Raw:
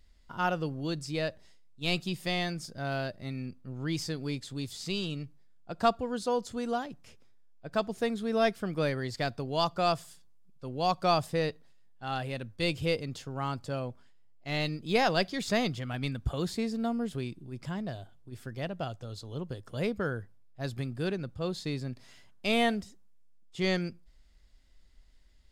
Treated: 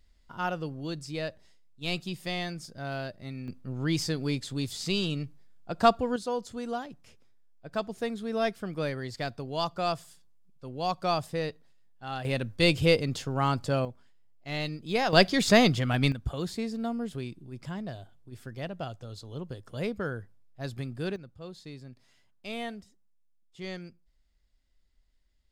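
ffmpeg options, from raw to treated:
-af "asetnsamples=n=441:p=0,asendcmd='3.48 volume volume 4.5dB;6.16 volume volume -2dB;12.25 volume volume 7dB;13.85 volume volume -1.5dB;15.13 volume volume 8.5dB;16.12 volume volume -1dB;21.16 volume volume -10dB',volume=0.794"

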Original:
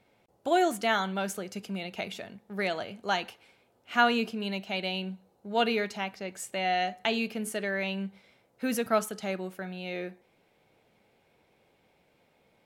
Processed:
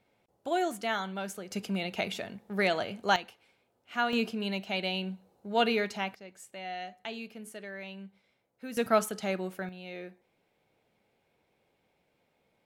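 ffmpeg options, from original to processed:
-af "asetnsamples=n=441:p=0,asendcmd='1.51 volume volume 3dB;3.16 volume volume -6.5dB;4.13 volume volume 0dB;6.15 volume volume -11dB;8.77 volume volume 1dB;9.69 volume volume -6.5dB',volume=0.562"

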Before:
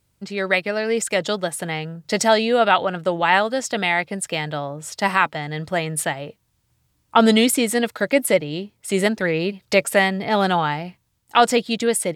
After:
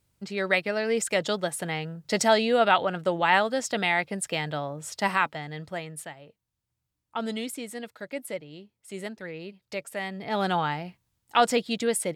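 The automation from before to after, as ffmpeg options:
-af "volume=2.11,afade=t=out:st=4.89:d=1.19:silence=0.237137,afade=t=in:st=9.98:d=0.59:silence=0.281838"

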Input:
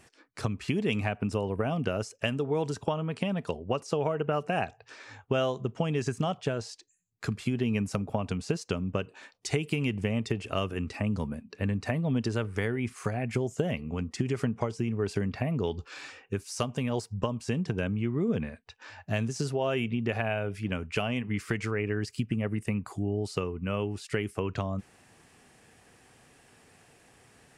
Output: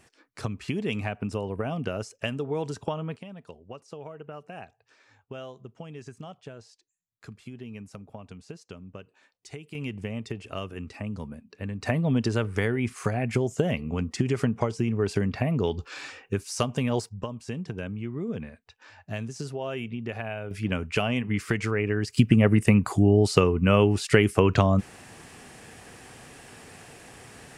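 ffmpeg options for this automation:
-af "asetnsamples=n=441:p=0,asendcmd='3.16 volume volume -12.5dB;9.75 volume volume -4.5dB;11.82 volume volume 4dB;17.09 volume volume -4dB;20.51 volume volume 4dB;22.17 volume volume 11.5dB',volume=0.891"

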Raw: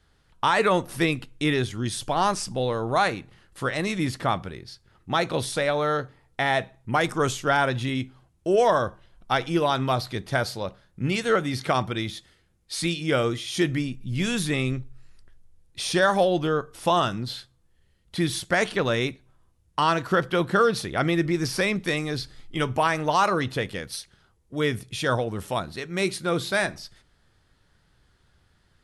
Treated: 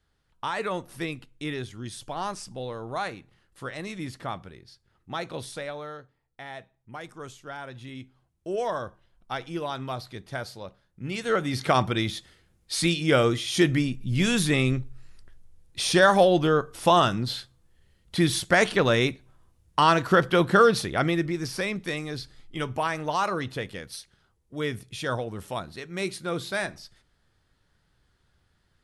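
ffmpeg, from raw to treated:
-af "volume=3.35,afade=t=out:st=5.5:d=0.5:silence=0.398107,afade=t=in:st=7.63:d=0.84:silence=0.398107,afade=t=in:st=11.04:d=0.78:silence=0.266073,afade=t=out:st=20.69:d=0.66:silence=0.421697"

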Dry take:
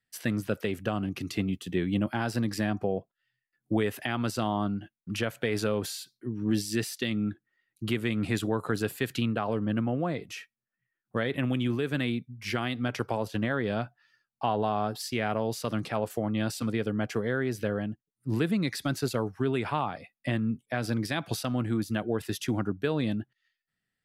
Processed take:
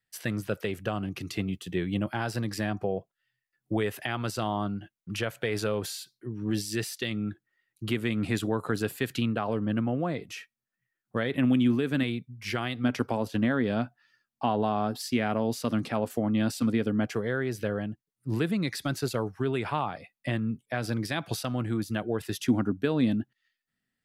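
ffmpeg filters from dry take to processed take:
-af "asetnsamples=n=441:p=0,asendcmd='7.91 equalizer g 1;11.36 equalizer g 7.5;12.03 equalizer g -3;12.84 equalizer g 9;17.06 equalizer g -2.5;22.47 equalizer g 9',equalizer=f=250:t=o:w=0.4:g=-7"

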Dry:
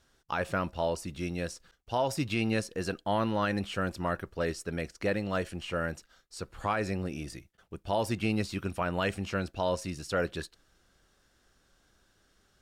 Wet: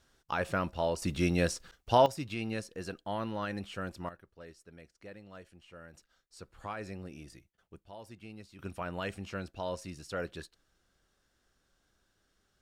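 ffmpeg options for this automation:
-af "asetnsamples=n=441:p=0,asendcmd='1.02 volume volume 6dB;2.06 volume volume -7dB;4.09 volume volume -19dB;5.94 volume volume -10dB;7.84 volume volume -19dB;8.59 volume volume -7dB',volume=0.891"

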